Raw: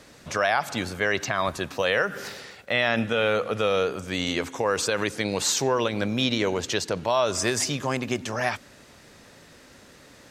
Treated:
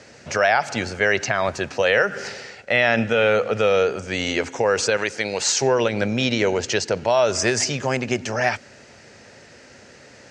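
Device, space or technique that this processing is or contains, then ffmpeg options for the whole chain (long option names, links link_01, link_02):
car door speaker: -filter_complex "[0:a]highpass=89,equalizer=frequency=170:width_type=q:width=4:gain=-7,equalizer=frequency=290:width_type=q:width=4:gain=-7,equalizer=frequency=1100:width_type=q:width=4:gain=-9,equalizer=frequency=3600:width_type=q:width=4:gain=-9,lowpass=frequency=7000:width=0.5412,lowpass=frequency=7000:width=1.3066,asettb=1/sr,asplit=3[link_01][link_02][link_03];[link_01]atrim=end=4.974[link_04];[link_02]atrim=start=4.97:end=5.62,asetpts=PTS-STARTPTS,afade=type=in:duration=0.004:curve=qsin,afade=type=out:start_time=0.646:duration=0.004:curve=qsin,lowshelf=frequency=330:gain=-9.5[link_05];[link_03]atrim=start=5.616[link_06];[link_04][link_05]acrossfade=duration=0.004:curve1=hsin:curve2=qsin[link_07];[link_07][link_06]acrossfade=duration=0.004:curve1=qsin:curve2=hsin,volume=6.5dB"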